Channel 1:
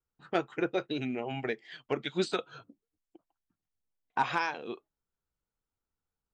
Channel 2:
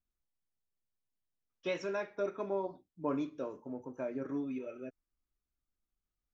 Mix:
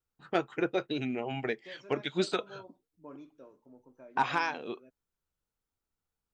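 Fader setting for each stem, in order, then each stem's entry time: +0.5, -14.0 dB; 0.00, 0.00 s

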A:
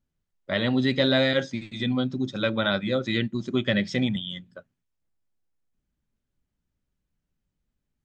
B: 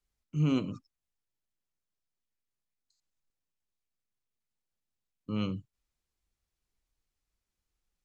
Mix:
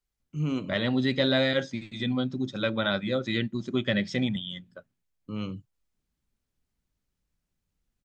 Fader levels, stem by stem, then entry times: -2.5, -1.5 dB; 0.20, 0.00 s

